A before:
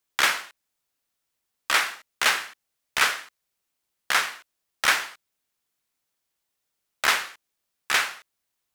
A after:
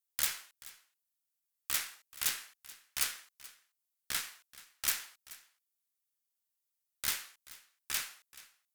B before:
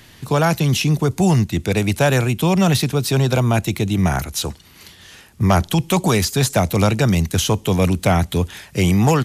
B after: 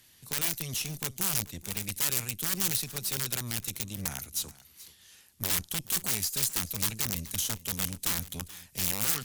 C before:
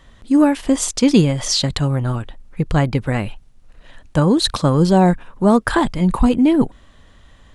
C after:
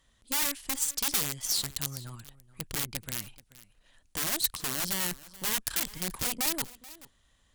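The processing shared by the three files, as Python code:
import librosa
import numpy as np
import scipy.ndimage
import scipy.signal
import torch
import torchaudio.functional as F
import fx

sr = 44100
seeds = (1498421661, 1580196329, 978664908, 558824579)

y = (np.mod(10.0 ** (9.5 / 20.0) * x + 1.0, 2.0) - 1.0) / 10.0 ** (9.5 / 20.0)
y = fx.dynamic_eq(y, sr, hz=600.0, q=0.82, threshold_db=-32.0, ratio=4.0, max_db=-6)
y = fx.cheby_harmonics(y, sr, harmonics=(6,), levels_db=(-17,), full_scale_db=-5.5)
y = scipy.signal.lfilter([1.0, -0.8], [1.0], y)
y = y + 10.0 ** (-19.0 / 20.0) * np.pad(y, (int(431 * sr / 1000.0), 0))[:len(y)]
y = F.gain(torch.from_numpy(y), -7.5).numpy()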